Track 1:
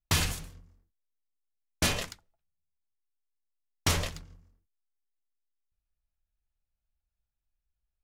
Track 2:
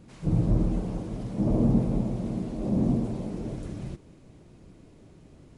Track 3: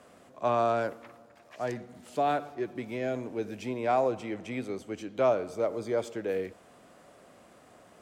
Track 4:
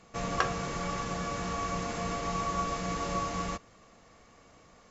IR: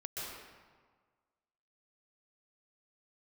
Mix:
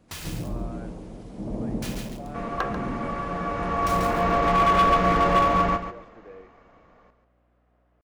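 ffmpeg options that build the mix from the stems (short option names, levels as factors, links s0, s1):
-filter_complex "[0:a]acrusher=bits=4:mix=0:aa=0.000001,volume=0.282,asplit=2[s0][s1];[s1]volume=0.596[s2];[1:a]volume=0.562,asplit=2[s3][s4];[s4]volume=0.596[s5];[2:a]lowpass=2200,alimiter=limit=0.0891:level=0:latency=1,aeval=exprs='val(0)+0.00355*(sin(2*PI*60*n/s)+sin(2*PI*2*60*n/s)/2+sin(2*PI*3*60*n/s)/3+sin(2*PI*4*60*n/s)/4+sin(2*PI*5*60*n/s)/5)':c=same,volume=0.211[s6];[3:a]lowpass=1800,dynaudnorm=f=250:g=13:m=5.01,asoftclip=type=hard:threshold=0.119,adelay=2200,volume=1.41,asplit=2[s7][s8];[s8]volume=0.316[s9];[s2][s5][s9]amix=inputs=3:normalize=0,aecho=0:1:140|280|420:1|0.16|0.0256[s10];[s0][s3][s6][s7][s10]amix=inputs=5:normalize=0,equalizer=f=120:w=0.62:g=-5.5"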